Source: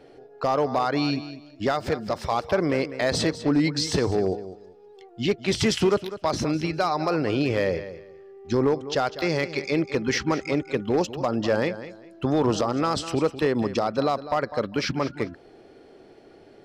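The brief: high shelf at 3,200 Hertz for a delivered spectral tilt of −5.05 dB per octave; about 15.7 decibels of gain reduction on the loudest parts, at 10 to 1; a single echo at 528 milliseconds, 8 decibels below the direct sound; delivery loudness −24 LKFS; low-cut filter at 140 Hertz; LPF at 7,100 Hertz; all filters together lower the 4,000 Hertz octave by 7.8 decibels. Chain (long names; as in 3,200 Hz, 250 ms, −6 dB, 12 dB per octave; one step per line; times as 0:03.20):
high-pass filter 140 Hz
low-pass filter 7,100 Hz
high-shelf EQ 3,200 Hz −5 dB
parametric band 4,000 Hz −5.5 dB
downward compressor 10 to 1, threshold −34 dBFS
single-tap delay 528 ms −8 dB
level +15 dB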